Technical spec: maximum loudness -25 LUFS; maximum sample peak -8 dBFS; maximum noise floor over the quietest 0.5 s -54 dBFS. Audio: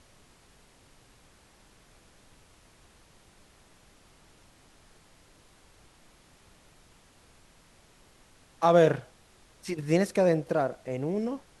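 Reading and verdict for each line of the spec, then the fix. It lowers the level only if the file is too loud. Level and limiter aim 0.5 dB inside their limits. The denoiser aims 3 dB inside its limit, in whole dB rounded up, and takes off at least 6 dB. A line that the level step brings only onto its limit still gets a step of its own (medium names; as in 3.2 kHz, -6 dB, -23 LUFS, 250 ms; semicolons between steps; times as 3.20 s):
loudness -26.5 LUFS: pass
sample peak -9.5 dBFS: pass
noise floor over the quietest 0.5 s -59 dBFS: pass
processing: none needed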